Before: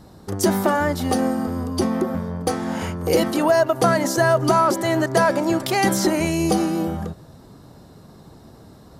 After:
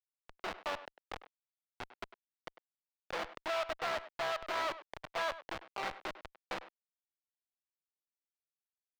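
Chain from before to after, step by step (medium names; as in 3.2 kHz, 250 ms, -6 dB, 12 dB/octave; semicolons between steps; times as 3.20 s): Chebyshev shaper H 3 -12 dB, 4 -12 dB, 6 -22 dB, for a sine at -7 dBFS; Schmitt trigger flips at -27.5 dBFS; three-band isolator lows -20 dB, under 550 Hz, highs -19 dB, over 4.8 kHz; speakerphone echo 100 ms, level -14 dB; trim -5 dB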